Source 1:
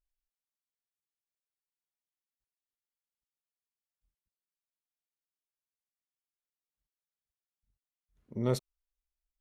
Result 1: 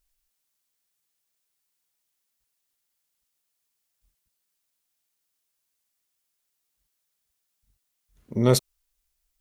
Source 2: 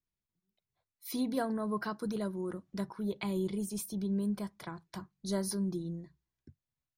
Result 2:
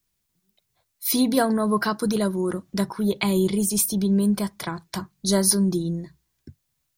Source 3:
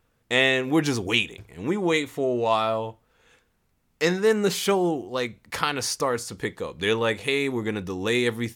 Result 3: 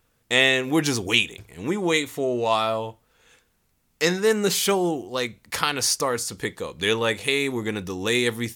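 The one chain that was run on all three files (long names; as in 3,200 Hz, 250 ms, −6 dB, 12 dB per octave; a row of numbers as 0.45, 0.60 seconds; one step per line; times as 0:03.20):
high-shelf EQ 3,500 Hz +8 dB
loudness normalisation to −23 LKFS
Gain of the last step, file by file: +10.0, +12.0, 0.0 decibels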